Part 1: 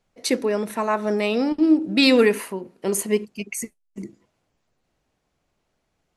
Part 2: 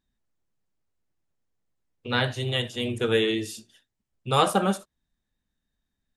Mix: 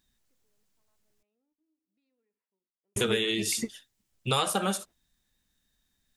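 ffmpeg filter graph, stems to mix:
-filter_complex "[0:a]lowpass=f=1900:p=1,acompressor=threshold=0.1:ratio=6,volume=1.26[s0];[1:a]highshelf=f=2200:g=11,volume=1.33,asplit=3[s1][s2][s3];[s1]atrim=end=1.23,asetpts=PTS-STARTPTS,afade=t=out:st=1.226:d=0.004:c=hsin[s4];[s2]atrim=start=1.23:end=2.96,asetpts=PTS-STARTPTS,volume=0[s5];[s3]atrim=start=2.96,asetpts=PTS-STARTPTS,afade=t=in:d=0.004:c=hsin[s6];[s4][s5][s6]concat=n=3:v=0:a=1,asplit=2[s7][s8];[s8]apad=whole_len=272046[s9];[s0][s9]sidechaingate=range=0.001:threshold=0.00891:ratio=16:detection=peak[s10];[s10][s7]amix=inputs=2:normalize=0,acompressor=threshold=0.0631:ratio=6"

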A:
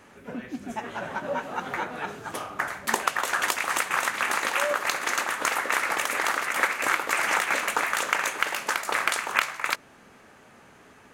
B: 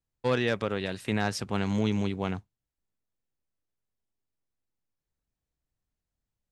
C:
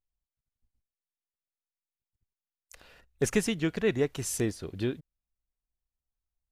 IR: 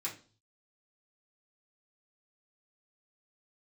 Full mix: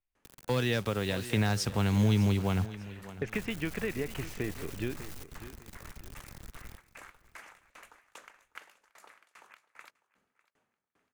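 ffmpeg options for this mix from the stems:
-filter_complex "[0:a]aeval=exprs='val(0)*pow(10,-31*if(lt(mod(2.5*n/s,1),2*abs(2.5)/1000),1-mod(2.5*n/s,1)/(2*abs(2.5)/1000),(mod(2.5*n/s,1)-2*abs(2.5)/1000)/(1-2*abs(2.5)/1000))/20)':c=same,adelay=150,volume=0.106,asplit=2[s0][s1];[s1]volume=0.0891[s2];[1:a]asubboost=boost=4:cutoff=130,acompressor=mode=upward:threshold=0.0282:ratio=2.5,acrusher=bits=7:mix=0:aa=0.000001,adelay=250,volume=1.26,asplit=2[s3][s4];[s4]volume=0.126[s5];[2:a]acompressor=threshold=0.0398:ratio=6,lowpass=f=2400:t=q:w=2.2,volume=0.794,asplit=2[s6][s7];[s7]volume=0.188[s8];[s2][s5][s8]amix=inputs=3:normalize=0,aecho=0:1:600|1200|1800|2400:1|0.3|0.09|0.027[s9];[s0][s3][s6][s9]amix=inputs=4:normalize=0,acrossover=split=210|3000[s10][s11][s12];[s11]acompressor=threshold=0.0355:ratio=6[s13];[s10][s13][s12]amix=inputs=3:normalize=0"

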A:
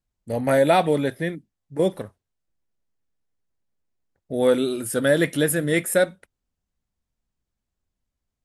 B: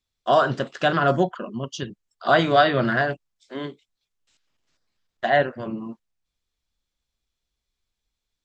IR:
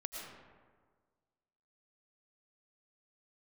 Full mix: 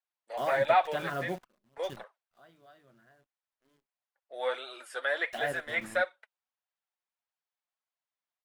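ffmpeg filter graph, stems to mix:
-filter_complex "[0:a]highpass=f=700:w=0.5412,highpass=f=700:w=1.3066,flanger=delay=1.1:depth=4.8:regen=31:speed=1.5:shape=triangular,lowpass=3800,volume=1.06,asplit=2[s0][s1];[1:a]acrusher=bits=6:dc=4:mix=0:aa=0.000001,adynamicequalizer=threshold=0.0178:dfrequency=3400:dqfactor=0.7:tfrequency=3400:tqfactor=0.7:attack=5:release=100:ratio=0.375:range=2:mode=cutabove:tftype=highshelf,adelay=100,volume=0.168[s2];[s1]apad=whole_len=376630[s3];[s2][s3]sidechaingate=range=0.0501:threshold=0.00224:ratio=16:detection=peak[s4];[s0][s4]amix=inputs=2:normalize=0,acrossover=split=2800[s5][s6];[s6]acompressor=threshold=0.00631:ratio=4:attack=1:release=60[s7];[s5][s7]amix=inputs=2:normalize=0"

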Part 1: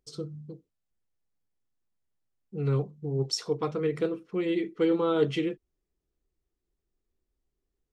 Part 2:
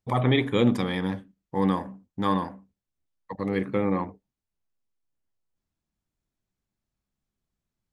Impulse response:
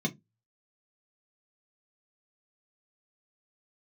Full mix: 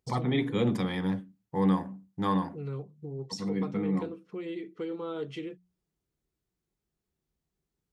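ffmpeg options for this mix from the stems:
-filter_complex "[0:a]bandreject=f=60:t=h:w=6,bandreject=f=120:t=h:w=6,bandreject=f=180:t=h:w=6,acompressor=threshold=0.0126:ratio=2,volume=0.794,asplit=2[s0][s1];[1:a]volume=0.668,asplit=2[s2][s3];[s3]volume=0.158[s4];[s1]apad=whole_len=349371[s5];[s2][s5]sidechaincompress=threshold=0.00631:ratio=8:attack=32:release=366[s6];[2:a]atrim=start_sample=2205[s7];[s4][s7]afir=irnorm=-1:irlink=0[s8];[s0][s6][s8]amix=inputs=3:normalize=0,highpass=48"

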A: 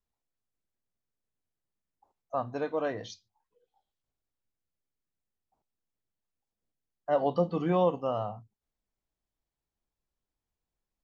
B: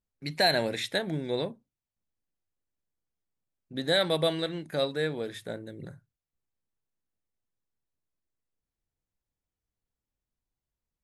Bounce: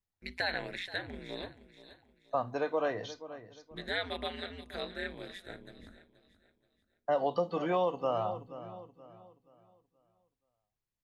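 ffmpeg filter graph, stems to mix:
-filter_complex "[0:a]agate=range=0.355:threshold=0.00224:ratio=16:detection=peak,volume=1.33,asplit=2[s0][s1];[s1]volume=0.141[s2];[1:a]aeval=exprs='val(0)*sin(2*PI*93*n/s)':c=same,equalizer=f=500:t=o:w=1:g=-3,equalizer=f=2000:t=o:w=1:g=8,equalizer=f=4000:t=o:w=1:g=4,volume=0.447,asplit=2[s3][s4];[s4]volume=0.15[s5];[s2][s5]amix=inputs=2:normalize=0,aecho=0:1:477|954|1431|1908|2385:1|0.34|0.116|0.0393|0.0134[s6];[s0][s3][s6]amix=inputs=3:normalize=0,acrossover=split=400|3300[s7][s8][s9];[s7]acompressor=threshold=0.00794:ratio=4[s10];[s8]acompressor=threshold=0.0447:ratio=4[s11];[s9]acompressor=threshold=0.00282:ratio=4[s12];[s10][s11][s12]amix=inputs=3:normalize=0"

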